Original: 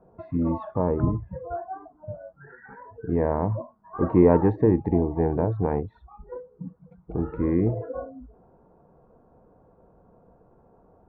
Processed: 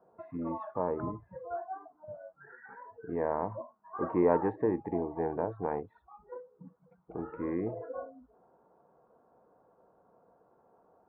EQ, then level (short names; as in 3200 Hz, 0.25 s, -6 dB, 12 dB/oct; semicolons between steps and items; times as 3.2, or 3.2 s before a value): HPF 930 Hz 6 dB/oct; LPF 2100 Hz 12 dB/oct; air absorption 140 m; 0.0 dB